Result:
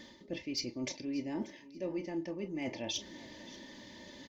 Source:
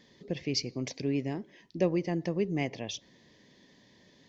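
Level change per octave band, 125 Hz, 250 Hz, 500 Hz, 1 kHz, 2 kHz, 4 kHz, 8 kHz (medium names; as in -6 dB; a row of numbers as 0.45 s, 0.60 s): -13.5 dB, -5.0 dB, -8.0 dB, -6.0 dB, -4.0 dB, -2.5 dB, no reading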